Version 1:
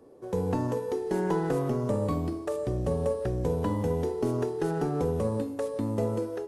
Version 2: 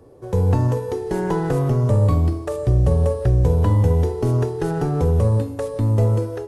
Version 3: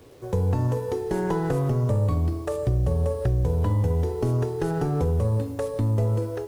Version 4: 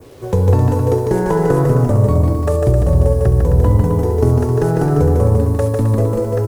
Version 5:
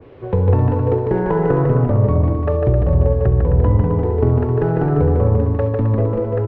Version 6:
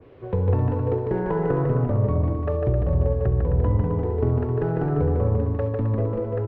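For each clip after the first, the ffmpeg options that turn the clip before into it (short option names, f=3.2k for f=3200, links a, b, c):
-af "lowshelf=f=150:t=q:w=1.5:g=9.5,volume=6dB"
-af "acompressor=threshold=-19dB:ratio=2.5,acrusher=bits=8:mix=0:aa=0.000001,volume=-2dB"
-filter_complex "[0:a]adynamicequalizer=threshold=0.00158:dfrequency=3300:dqfactor=1:tfrequency=3300:tqfactor=1:attack=5:release=100:ratio=0.375:range=4:mode=cutabove:tftype=bell,asplit=2[a][b];[b]aecho=0:1:150|262.5|346.9|410.2|457.6:0.631|0.398|0.251|0.158|0.1[c];[a][c]amix=inputs=2:normalize=0,volume=9dB"
-af "lowpass=f=2.8k:w=0.5412,lowpass=f=2.8k:w=1.3066,volume=-2dB"
-af "bandreject=f=860:w=28,volume=-6.5dB"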